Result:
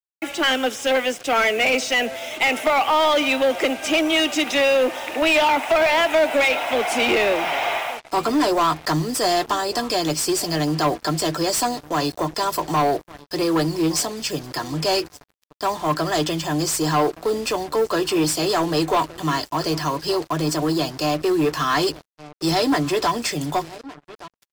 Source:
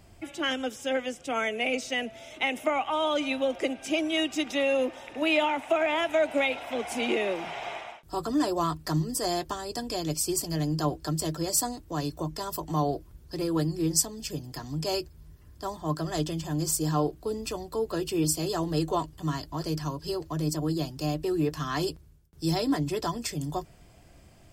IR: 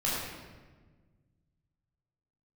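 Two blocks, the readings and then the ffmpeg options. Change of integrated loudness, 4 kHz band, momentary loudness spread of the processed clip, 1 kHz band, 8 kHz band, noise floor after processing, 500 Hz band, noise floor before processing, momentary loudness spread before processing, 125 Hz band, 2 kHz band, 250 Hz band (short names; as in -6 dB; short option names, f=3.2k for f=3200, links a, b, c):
+8.5 dB, +10.5 dB, 7 LU, +11.0 dB, +5.0 dB, -62 dBFS, +8.5 dB, -54 dBFS, 9 LU, +2.5 dB, +11.0 dB, +6.5 dB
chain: -filter_complex "[0:a]agate=range=-26dB:threshold=-48dB:ratio=16:detection=peak,asplit=2[a][b];[b]adelay=1166,lowpass=f=2.1k:p=1,volume=-22dB,asplit=2[c][d];[d]adelay=1166,lowpass=f=2.1k:p=1,volume=0.21[e];[c][e]amix=inputs=2:normalize=0[f];[a][f]amix=inputs=2:normalize=0,asplit=2[g][h];[h]highpass=f=720:p=1,volume=23dB,asoftclip=type=tanh:threshold=-9dB[i];[g][i]amix=inputs=2:normalize=0,lowpass=f=3.8k:p=1,volume=-6dB,acrusher=bits=5:mix=0:aa=0.5"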